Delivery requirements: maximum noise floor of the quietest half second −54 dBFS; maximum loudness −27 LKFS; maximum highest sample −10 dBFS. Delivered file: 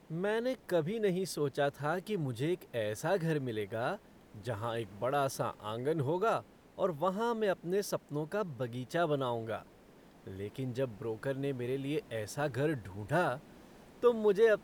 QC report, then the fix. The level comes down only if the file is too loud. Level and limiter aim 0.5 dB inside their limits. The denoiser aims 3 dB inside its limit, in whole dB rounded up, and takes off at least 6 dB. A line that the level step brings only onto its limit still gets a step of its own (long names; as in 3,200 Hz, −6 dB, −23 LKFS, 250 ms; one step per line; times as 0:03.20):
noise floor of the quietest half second −58 dBFS: in spec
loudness −34.5 LKFS: in spec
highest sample −15.0 dBFS: in spec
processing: no processing needed